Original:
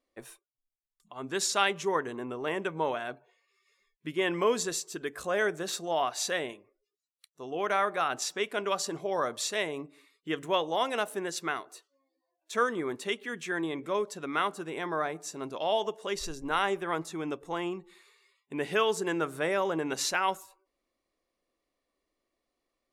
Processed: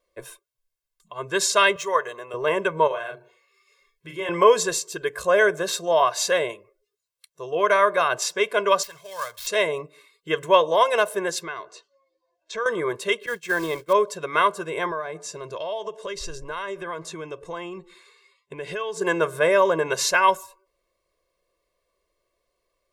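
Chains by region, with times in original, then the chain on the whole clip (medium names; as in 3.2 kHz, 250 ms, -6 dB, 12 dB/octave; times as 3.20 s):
1.76–2.34 s: median filter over 3 samples + high-pass 830 Hz 6 dB/octave + comb 1.6 ms, depth 40%
2.87–4.29 s: hum notches 60/120/180/240/300/360 Hz + compression 1.5:1, threshold -49 dBFS + doubling 36 ms -4.5 dB
8.83–9.47 s: dead-time distortion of 0.068 ms + amplifier tone stack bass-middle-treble 10-0-10
11.43–12.66 s: de-hum 95.21 Hz, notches 3 + compression 3:1, threshold -37 dBFS + low-pass 6.6 kHz 24 dB/octave
13.26–13.93 s: expander -36 dBFS + short-mantissa float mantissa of 2-bit
14.91–19.01 s: low-pass 8.9 kHz + compression 5:1, threshold -36 dBFS
whole clip: dynamic bell 890 Hz, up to +4 dB, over -40 dBFS, Q 0.8; comb 1.9 ms, depth 91%; trim +4.5 dB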